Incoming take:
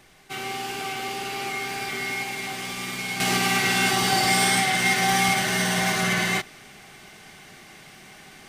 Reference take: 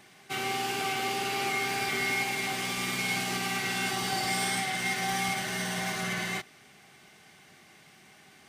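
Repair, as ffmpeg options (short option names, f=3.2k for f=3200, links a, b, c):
-af "agate=range=-21dB:threshold=-39dB,asetnsamples=n=441:p=0,asendcmd='3.2 volume volume -9dB',volume=0dB"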